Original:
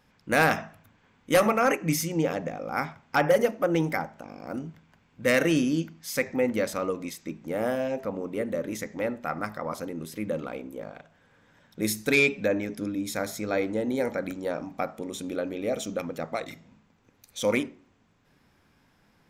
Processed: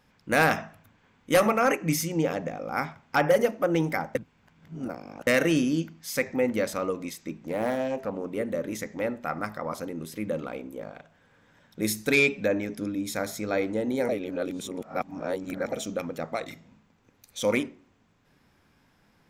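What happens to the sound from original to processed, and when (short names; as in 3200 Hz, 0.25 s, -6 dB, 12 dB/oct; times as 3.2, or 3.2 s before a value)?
4.15–5.27 reverse
7.35–8.26 Doppler distortion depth 0.21 ms
14.09–15.72 reverse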